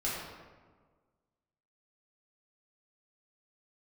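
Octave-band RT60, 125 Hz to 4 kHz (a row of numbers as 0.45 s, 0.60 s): 1.7 s, 1.7 s, 1.6 s, 1.4 s, 1.1 s, 0.80 s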